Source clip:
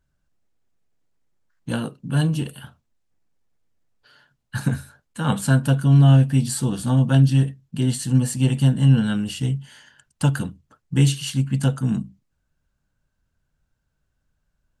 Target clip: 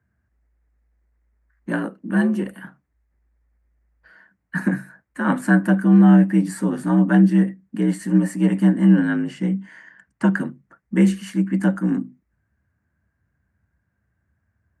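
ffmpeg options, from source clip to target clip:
-filter_complex "[0:a]asettb=1/sr,asplit=3[a][b][c];[a]atrim=end=9.074[d];[b]atrim=start=9.07:end=10.4,asetpts=PTS-STARTPTS,afade=t=in:d=0.004:c=qsin,afade=t=out:st=1.326:d=0.004:c=qsin,lowpass=7.3k[e];[c]atrim=start=10.396[f];[d][e]acrossfade=d=0.004:c1=hsin:c2=qsin[g];[g][f]acrossfade=d=0.004:c1=qsin:c2=hsin,highshelf=f=2.5k:t=q:w=3:g=-9.5,afreqshift=56,volume=1dB"

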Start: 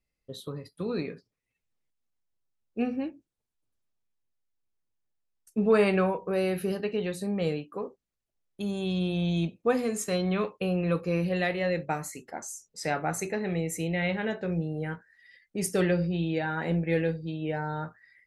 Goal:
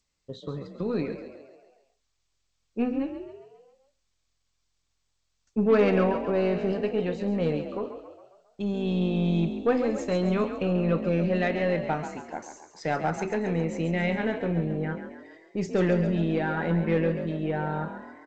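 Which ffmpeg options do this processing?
-filter_complex "[0:a]aemphasis=mode=reproduction:type=75fm,aeval=exprs='0.266*(cos(1*acos(clip(val(0)/0.266,-1,1)))-cos(1*PI/2))+0.0119*(cos(5*acos(clip(val(0)/0.266,-1,1)))-cos(5*PI/2))+0.00668*(cos(8*acos(clip(val(0)/0.266,-1,1)))-cos(8*PI/2))':c=same,asplit=2[a][b];[b]asplit=6[c][d][e][f][g][h];[c]adelay=136,afreqshift=43,volume=-9.5dB[i];[d]adelay=272,afreqshift=86,volume=-15.3dB[j];[e]adelay=408,afreqshift=129,volume=-21.2dB[k];[f]adelay=544,afreqshift=172,volume=-27dB[l];[g]adelay=680,afreqshift=215,volume=-32.9dB[m];[h]adelay=816,afreqshift=258,volume=-38.7dB[n];[i][j][k][l][m][n]amix=inputs=6:normalize=0[o];[a][o]amix=inputs=2:normalize=0" -ar 16000 -c:a g722

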